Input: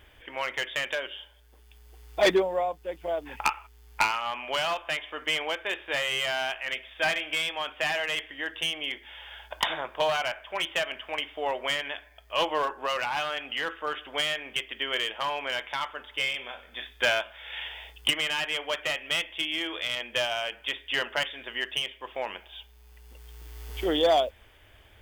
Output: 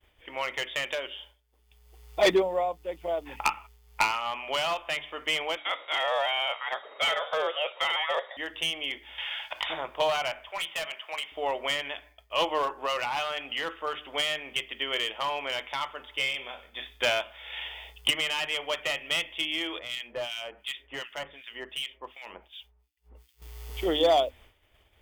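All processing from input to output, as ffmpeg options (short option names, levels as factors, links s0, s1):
-filter_complex "[0:a]asettb=1/sr,asplit=3[s0][s1][s2];[s0]atrim=end=5.574[s3];[s1]atrim=start=5.57:end=8.37,asetpts=PTS-STARTPTS,afade=t=in:d=0.004:c=qsin,afade=t=out:st=2.796:d=0.004:c=qsin,lowpass=f=3200:t=q:w=0.5098,lowpass=f=3200:t=q:w=0.6013,lowpass=f=3200:t=q:w=0.9,lowpass=f=3200:t=q:w=2.563,afreqshift=-3800,highpass=f=510:t=q:w=3.8,asoftclip=type=hard:threshold=0.1[s4];[s2]atrim=start=8.366[s5];[s3][s4]acrossfade=d=0.004:c1=hsin:c2=qsin[s6];[s6][s5]acrossfade=d=0.004:c1=qsin:c2=hsin,asettb=1/sr,asplit=3[s7][s8][s9];[s7]atrim=end=9.184[s10];[s8]atrim=start=9.18:end=9.7,asetpts=PTS-STARTPTS,afade=t=in:d=0.004:c=qsin,afade=t=out:st=0.516:d=0.004:c=qsin,equalizer=f=2400:t=o:w=2.2:g=13,acompressor=threshold=0.0398:ratio=6:attack=3.2:release=140:knee=1:detection=peak,bandreject=f=60:t=h:w=6,bandreject=f=120:t=h:w=6,bandreject=f=180:t=h:w=6,bandreject=f=240:t=h:w=6,bandreject=f=300:t=h:w=6,bandreject=f=360:t=h:w=6,bandreject=f=420:t=h:w=6[s11];[s9]atrim=start=9.696[s12];[s10][s11]acrossfade=d=0.004:c1=hsin:c2=qsin[s13];[s13][s12]acrossfade=d=0.004:c1=qsin:c2=hsin,asettb=1/sr,asplit=3[s14][s15][s16];[s14]atrim=end=10.494[s17];[s15]atrim=start=10.49:end=11.32,asetpts=PTS-STARTPTS,afade=t=in:d=0.004:c=qsin,afade=t=out:st=0.826:d=0.004:c=qsin,highpass=660,asoftclip=type=hard:threshold=0.0422[s18];[s16]atrim=start=11.316[s19];[s17][s18]acrossfade=d=0.004:c1=hsin:c2=qsin[s20];[s20][s19]acrossfade=d=0.004:c1=qsin:c2=hsin,asettb=1/sr,asplit=3[s21][s22][s23];[s21]atrim=end=19.794[s24];[s22]atrim=start=19.79:end=23.42,asetpts=PTS-STARTPTS,afade=t=in:d=0.004:c=qsin,afade=t=out:st=3.626:d=0.004:c=qsin,acrossover=split=1600[s25][s26];[s25]aeval=exprs='val(0)*(1-1/2+1/2*cos(2*PI*2.7*n/s))':c=same[s27];[s26]aeval=exprs='val(0)*(1-1/2-1/2*cos(2*PI*2.7*n/s))':c=same[s28];[s27][s28]amix=inputs=2:normalize=0,volume=23.7,asoftclip=hard,volume=0.0422[s29];[s23]atrim=start=23.416[s30];[s24][s29]acrossfade=d=0.004:c1=hsin:c2=qsin[s31];[s31][s30]acrossfade=d=0.004:c1=qsin:c2=hsin,agate=range=0.0224:threshold=0.00398:ratio=3:detection=peak,equalizer=f=1600:w=7.5:g=-8.5,bandreject=f=50:t=h:w=6,bandreject=f=100:t=h:w=6,bandreject=f=150:t=h:w=6,bandreject=f=200:t=h:w=6,bandreject=f=250:t=h:w=6,bandreject=f=300:t=h:w=6"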